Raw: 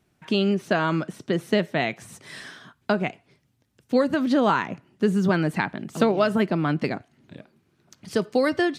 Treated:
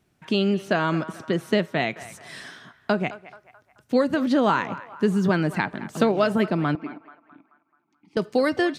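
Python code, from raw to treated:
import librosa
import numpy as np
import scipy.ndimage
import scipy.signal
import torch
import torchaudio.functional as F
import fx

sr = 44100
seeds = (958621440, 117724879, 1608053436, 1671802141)

y = fx.vowel_filter(x, sr, vowel='u', at=(6.75, 8.17))
y = fx.echo_banded(y, sr, ms=216, feedback_pct=52, hz=1200.0, wet_db=-14.0)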